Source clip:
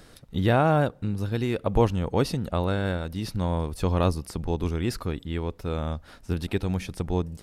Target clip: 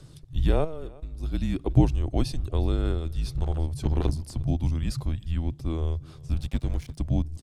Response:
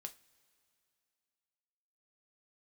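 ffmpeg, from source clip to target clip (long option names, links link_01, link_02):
-filter_complex "[0:a]lowpass=10000,lowshelf=frequency=73:gain=6,aphaser=in_gain=1:out_gain=1:delay=2.6:decay=0.22:speed=0.35:type=triangular,equalizer=frequency=1700:width=0.7:gain=-10,asettb=1/sr,asplit=3[link_01][link_02][link_03];[link_01]atrim=end=0.644[link_04];[link_02]atrim=start=0.64:end=1.23,asetpts=PTS-STARTPTS,afade=type=in:duration=0.004:curve=qsin,afade=type=out:start_time=0.586:duration=0.004:curve=qsin,acompressor=threshold=-31dB:ratio=10[link_05];[link_03]atrim=start=1.226[link_06];[link_04][link_05]acrossfade=duration=0.004:curve1=hsin:curve2=qsin[link_07];[link_07][link_06]acrossfade=duration=0.004:curve1=qsin:curve2=hsin,asettb=1/sr,asplit=3[link_08][link_09][link_10];[link_08]atrim=end=6.354[link_11];[link_09]atrim=start=6.35:end=6.98,asetpts=PTS-STARTPTS,afade=type=in:duration=0.004:curve=qsin,afade=type=out:start_time=0.626:duration=0.004:curve=qsin,aeval=exprs='sgn(val(0))*max(abs(val(0))-0.01,0)':channel_layout=same[link_12];[link_10]atrim=start=6.976[link_13];[link_11][link_12]acrossfade=duration=0.004:curve1=hsin:curve2=qsin[link_14];[link_14][link_13]acrossfade=duration=0.004:curve1=qsin:curve2=hsin,afreqshift=-160,asettb=1/sr,asplit=3[link_15][link_16][link_17];[link_15]atrim=end=3.374[link_18];[link_16]atrim=start=3.37:end=4.34,asetpts=PTS-STARTPTS,afade=type=in:duration=0.004:curve=qsin,afade=type=out:start_time=0.966:duration=0.004:curve=qsin,aeval=exprs='clip(val(0),-1,0.0422)':channel_layout=same[link_19];[link_17]atrim=start=4.336[link_20];[link_18][link_19]acrossfade=duration=0.004:curve1=hsin:curve2=qsin[link_21];[link_21][link_20]acrossfade=duration=0.004:curve1=qsin:curve2=hsin,aecho=1:1:358:0.0668"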